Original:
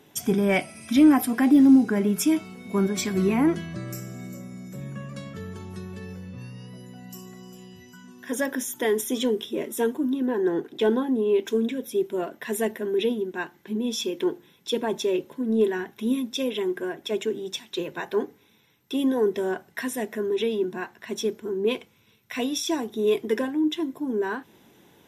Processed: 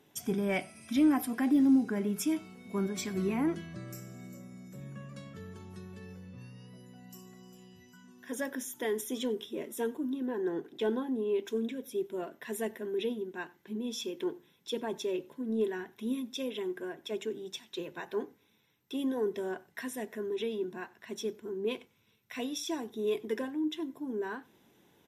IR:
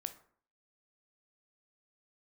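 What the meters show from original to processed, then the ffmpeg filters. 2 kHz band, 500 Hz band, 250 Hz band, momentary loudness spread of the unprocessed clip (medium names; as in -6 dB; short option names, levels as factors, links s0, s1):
-9.0 dB, -9.0 dB, -9.0 dB, 16 LU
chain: -filter_complex "[0:a]asplit=2[s0][s1];[s1]adelay=93.29,volume=0.0631,highshelf=f=4000:g=-2.1[s2];[s0][s2]amix=inputs=2:normalize=0,volume=0.355"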